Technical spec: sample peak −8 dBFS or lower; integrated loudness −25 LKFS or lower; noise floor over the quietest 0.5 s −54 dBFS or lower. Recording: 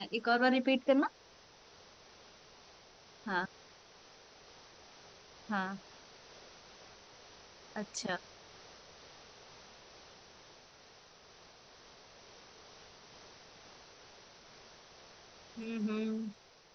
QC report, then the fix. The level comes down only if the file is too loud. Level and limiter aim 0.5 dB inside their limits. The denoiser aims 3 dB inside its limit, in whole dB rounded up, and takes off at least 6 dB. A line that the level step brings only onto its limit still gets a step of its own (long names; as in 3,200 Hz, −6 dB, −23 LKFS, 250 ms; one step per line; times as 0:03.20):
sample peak −17.0 dBFS: in spec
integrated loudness −35.0 LKFS: in spec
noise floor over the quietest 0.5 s −60 dBFS: in spec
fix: no processing needed